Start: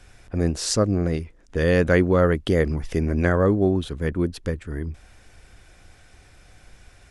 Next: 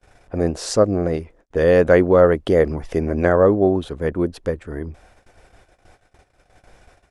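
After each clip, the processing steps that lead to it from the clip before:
noise gate −48 dBFS, range −28 dB
parametric band 640 Hz +11.5 dB 2.1 octaves
level −3 dB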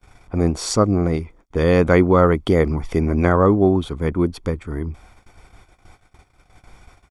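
comb filter 0.9 ms, depth 54%
level +1.5 dB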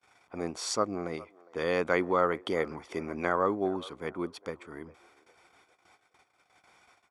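meter weighting curve A
delay with a band-pass on its return 407 ms, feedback 36%, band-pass 780 Hz, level −19.5 dB
level −8.5 dB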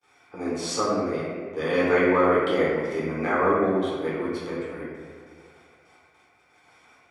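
convolution reverb RT60 1.7 s, pre-delay 3 ms, DRR −9 dB
level −3.5 dB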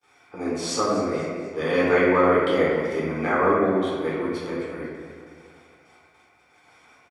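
repeating echo 244 ms, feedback 45%, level −15.5 dB
level +1.5 dB

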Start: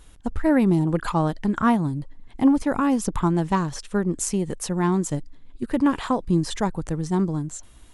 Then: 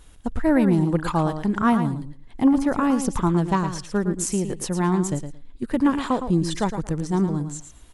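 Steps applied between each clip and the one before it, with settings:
repeating echo 112 ms, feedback 16%, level −9 dB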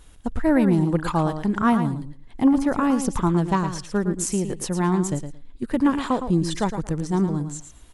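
no processing that can be heard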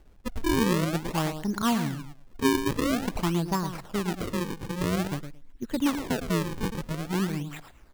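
sample-and-hold swept by an LFO 37×, swing 160% 0.49 Hz
level −6 dB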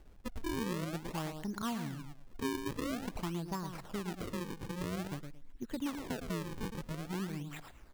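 downward compressor 2 to 1, threshold −40 dBFS, peak gain reduction 11.5 dB
level −2 dB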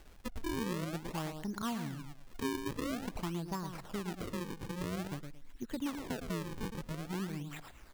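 one half of a high-frequency compander encoder only

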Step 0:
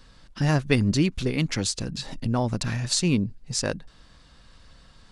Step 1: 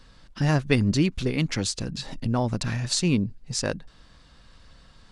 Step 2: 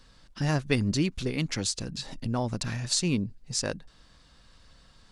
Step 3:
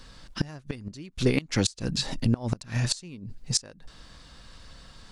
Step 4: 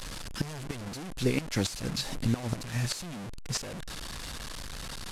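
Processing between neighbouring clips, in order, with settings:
high-shelf EQ 8,800 Hz −4.5 dB
bass and treble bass −1 dB, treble +4 dB; level −4 dB
gate with flip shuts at −19 dBFS, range −24 dB; level +8 dB
linear delta modulator 64 kbit/s, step −29 dBFS; level −4 dB

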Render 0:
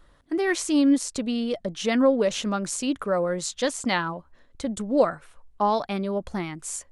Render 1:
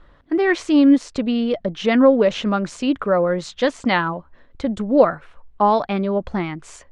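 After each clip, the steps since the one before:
low-pass filter 3,100 Hz 12 dB per octave
level +6.5 dB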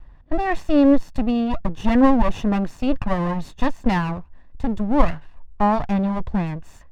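lower of the sound and its delayed copy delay 1.1 ms
spectral tilt −2.5 dB per octave
level −3.5 dB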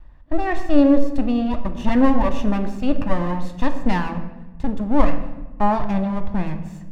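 convolution reverb RT60 1.1 s, pre-delay 3 ms, DRR 7 dB
level −1.5 dB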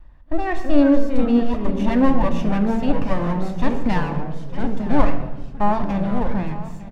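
single-tap delay 905 ms −16.5 dB
delay with pitch and tempo change per echo 269 ms, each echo −3 semitones, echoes 3, each echo −6 dB
level −1 dB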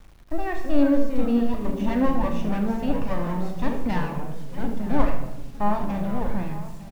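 bit reduction 8 bits
on a send: ambience of single reflections 39 ms −11.5 dB, 77 ms −11 dB
on the sum: level −5.5 dB

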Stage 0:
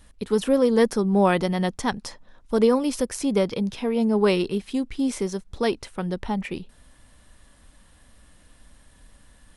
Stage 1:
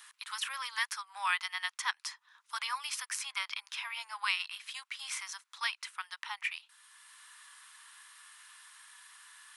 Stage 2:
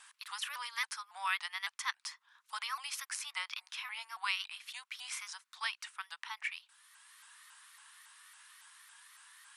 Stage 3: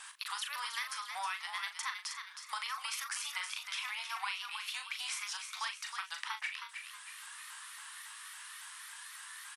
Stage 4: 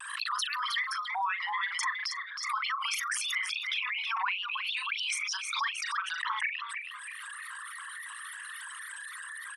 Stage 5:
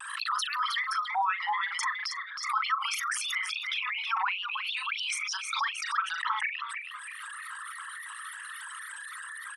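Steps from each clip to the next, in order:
dynamic equaliser 2,300 Hz, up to +6 dB, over −44 dBFS, Q 1.2; Butterworth high-pass 1,000 Hz 48 dB per octave; multiband upward and downward compressor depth 40%; level −3.5 dB
pitch modulation by a square or saw wave saw up 3.6 Hz, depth 160 cents; level −3 dB
downward compressor 6 to 1, threshold −45 dBFS, peak gain reduction 15.5 dB; double-tracking delay 39 ms −8 dB; on a send: echo with shifted repeats 317 ms, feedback 43%, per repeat +71 Hz, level −7 dB; on the sum: level +8 dB
spectral envelope exaggerated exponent 3; pitch vibrato 0.42 Hz 19 cents; background raised ahead of every attack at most 54 dB per second; level +6.5 dB
hollow resonant body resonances 820/1,300 Hz, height 8 dB, ringing for 25 ms

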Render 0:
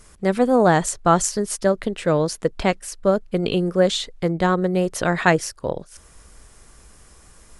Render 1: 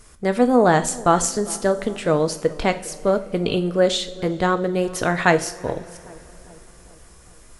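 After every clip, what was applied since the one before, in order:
feedback echo with a low-pass in the loop 404 ms, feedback 60%, low-pass 1,100 Hz, level −20 dB
coupled-rooms reverb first 0.42 s, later 3.7 s, from −20 dB, DRR 8.5 dB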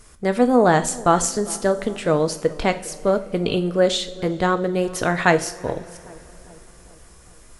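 de-essing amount 25%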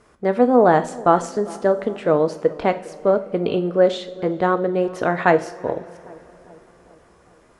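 resonant band-pass 560 Hz, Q 0.51
level +2.5 dB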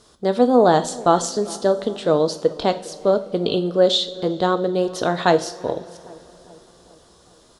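high shelf with overshoot 2,900 Hz +8.5 dB, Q 3
far-end echo of a speakerphone 350 ms, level −30 dB

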